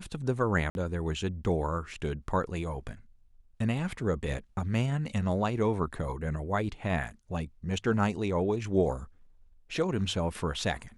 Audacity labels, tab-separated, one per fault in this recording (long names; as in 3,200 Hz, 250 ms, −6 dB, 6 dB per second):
0.700000	0.750000	drop-out 51 ms